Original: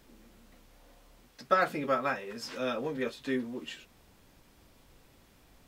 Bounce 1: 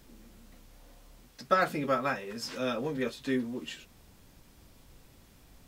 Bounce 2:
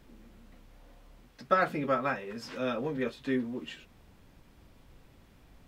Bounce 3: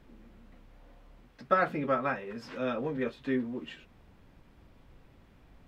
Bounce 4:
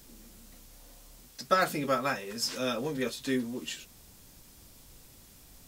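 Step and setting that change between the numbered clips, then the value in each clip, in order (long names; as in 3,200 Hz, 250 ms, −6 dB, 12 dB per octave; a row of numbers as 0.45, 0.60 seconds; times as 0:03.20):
bass and treble, treble: +4, −6, −15, +14 decibels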